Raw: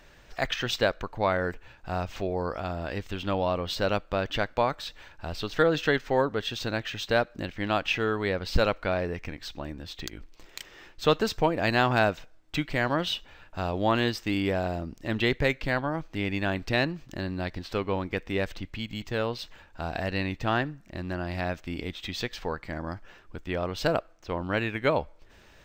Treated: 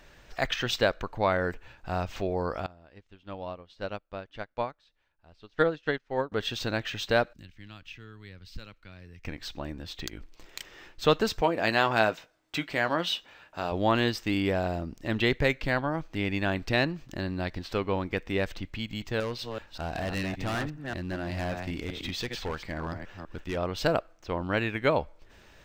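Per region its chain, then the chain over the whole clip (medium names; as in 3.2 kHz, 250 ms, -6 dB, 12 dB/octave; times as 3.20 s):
2.66–6.32 s: distance through air 51 m + upward expansion 2.5:1, over -36 dBFS
7.33–9.25 s: amplifier tone stack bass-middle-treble 6-0-2 + three bands compressed up and down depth 40%
11.41–13.72 s: high-pass 290 Hz 6 dB/octave + doubling 18 ms -11 dB
19.20–23.57 s: chunks repeated in reverse 193 ms, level -7 dB + hard clipper -27.5 dBFS
whole clip: none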